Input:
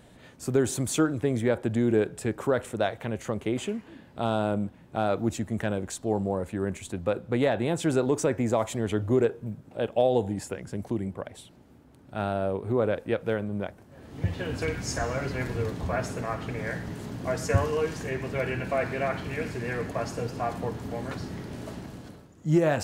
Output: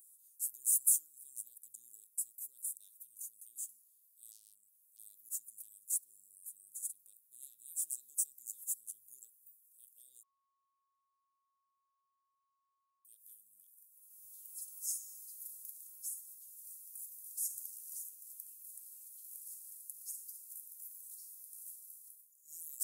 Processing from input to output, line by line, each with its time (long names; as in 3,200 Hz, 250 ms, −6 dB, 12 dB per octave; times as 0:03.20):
0:04.31–0:04.99: saturating transformer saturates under 1,600 Hz
0:10.23–0:13.05: beep over 1,100 Hz −11.5 dBFS
whole clip: inverse Chebyshev high-pass filter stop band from 2,200 Hz, stop band 80 dB; level +16 dB